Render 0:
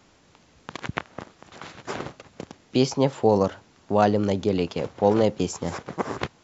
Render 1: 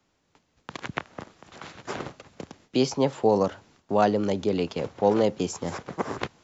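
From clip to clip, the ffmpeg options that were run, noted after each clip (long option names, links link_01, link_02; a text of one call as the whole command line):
ffmpeg -i in.wav -filter_complex "[0:a]agate=range=-12dB:threshold=-54dB:ratio=16:detection=peak,acrossover=split=150|780[link_01][link_02][link_03];[link_01]alimiter=level_in=11.5dB:limit=-24dB:level=0:latency=1,volume=-11.5dB[link_04];[link_04][link_02][link_03]amix=inputs=3:normalize=0,volume=-1.5dB" out.wav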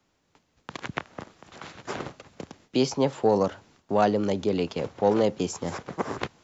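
ffmpeg -i in.wav -af "acontrast=37,volume=-5.5dB" out.wav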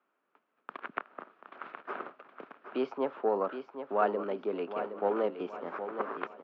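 ffmpeg -i in.wav -af "highpass=frequency=290:width=0.5412,highpass=frequency=290:width=1.3066,equalizer=frequency=310:width_type=q:width=4:gain=-6,equalizer=frequency=500:width_type=q:width=4:gain=-5,equalizer=frequency=820:width_type=q:width=4:gain=-4,equalizer=frequency=1300:width_type=q:width=4:gain=6,equalizer=frequency=2000:width_type=q:width=4:gain=-6,lowpass=frequency=2300:width=0.5412,lowpass=frequency=2300:width=1.3066,aecho=1:1:768|1536|2304|3072:0.335|0.124|0.0459|0.017,volume=-3.5dB" out.wav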